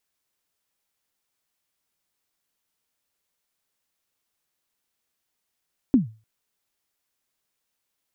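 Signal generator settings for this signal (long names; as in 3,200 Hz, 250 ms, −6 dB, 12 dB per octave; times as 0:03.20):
synth kick length 0.30 s, from 290 Hz, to 110 Hz, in 134 ms, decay 0.32 s, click off, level −9.5 dB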